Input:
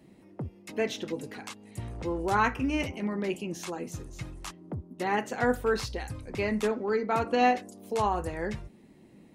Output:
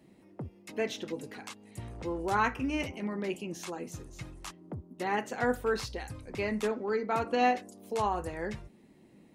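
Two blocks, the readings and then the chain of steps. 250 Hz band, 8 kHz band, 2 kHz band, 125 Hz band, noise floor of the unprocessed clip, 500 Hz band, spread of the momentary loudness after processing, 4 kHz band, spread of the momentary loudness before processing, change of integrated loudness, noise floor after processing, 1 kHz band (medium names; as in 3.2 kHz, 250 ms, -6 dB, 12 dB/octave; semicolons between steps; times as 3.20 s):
-3.5 dB, -2.5 dB, -2.5 dB, -4.5 dB, -56 dBFS, -3.0 dB, 16 LU, -2.5 dB, 15 LU, -2.5 dB, -59 dBFS, -2.5 dB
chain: bass shelf 170 Hz -3 dB; trim -2.5 dB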